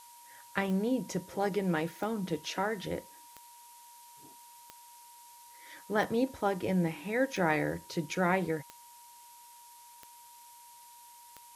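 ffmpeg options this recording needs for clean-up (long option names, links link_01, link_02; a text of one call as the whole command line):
ffmpeg -i in.wav -af "adeclick=threshold=4,bandreject=frequency=950:width=30,afftdn=noise_reduction=23:noise_floor=-54" out.wav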